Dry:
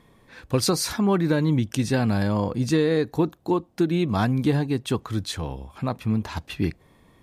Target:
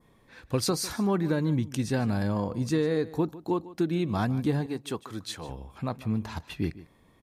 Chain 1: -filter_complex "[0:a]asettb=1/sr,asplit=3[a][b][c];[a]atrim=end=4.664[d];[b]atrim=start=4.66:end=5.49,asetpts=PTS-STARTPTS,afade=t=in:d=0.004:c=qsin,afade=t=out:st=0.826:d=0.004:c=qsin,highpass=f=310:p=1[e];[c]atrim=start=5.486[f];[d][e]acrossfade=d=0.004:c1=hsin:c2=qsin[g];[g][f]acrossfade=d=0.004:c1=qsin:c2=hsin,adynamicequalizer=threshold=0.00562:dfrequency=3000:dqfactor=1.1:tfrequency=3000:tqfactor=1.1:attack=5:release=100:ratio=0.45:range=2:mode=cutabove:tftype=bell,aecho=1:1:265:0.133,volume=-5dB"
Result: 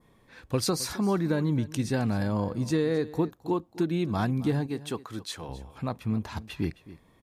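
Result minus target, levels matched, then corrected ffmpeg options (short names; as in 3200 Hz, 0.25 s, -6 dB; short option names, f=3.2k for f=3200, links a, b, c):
echo 0.115 s late
-filter_complex "[0:a]asettb=1/sr,asplit=3[a][b][c];[a]atrim=end=4.664[d];[b]atrim=start=4.66:end=5.49,asetpts=PTS-STARTPTS,afade=t=in:d=0.004:c=qsin,afade=t=out:st=0.826:d=0.004:c=qsin,highpass=f=310:p=1[e];[c]atrim=start=5.486[f];[d][e]acrossfade=d=0.004:c1=hsin:c2=qsin[g];[g][f]acrossfade=d=0.004:c1=qsin:c2=hsin,adynamicequalizer=threshold=0.00562:dfrequency=3000:dqfactor=1.1:tfrequency=3000:tqfactor=1.1:attack=5:release=100:ratio=0.45:range=2:mode=cutabove:tftype=bell,aecho=1:1:150:0.133,volume=-5dB"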